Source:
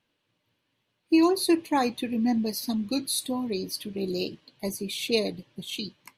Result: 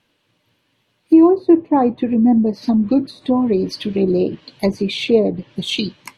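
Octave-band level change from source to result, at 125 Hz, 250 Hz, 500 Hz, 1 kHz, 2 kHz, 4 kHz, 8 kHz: +13.5 dB, +12.0 dB, +12.0 dB, +8.0 dB, +4.5 dB, +5.0 dB, no reading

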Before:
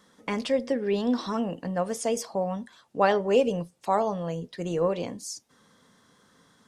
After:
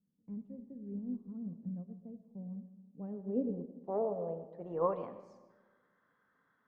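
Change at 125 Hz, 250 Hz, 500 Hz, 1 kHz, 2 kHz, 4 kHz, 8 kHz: -10.5 dB, -10.0 dB, -12.5 dB, -15.0 dB, under -30 dB, under -35 dB, under -40 dB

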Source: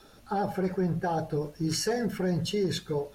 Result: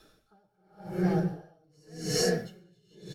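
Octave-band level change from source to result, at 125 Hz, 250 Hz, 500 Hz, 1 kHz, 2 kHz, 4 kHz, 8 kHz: -3.0 dB, -3.0 dB, -4.0 dB, -9.5 dB, -1.5 dB, -1.5 dB, +0.5 dB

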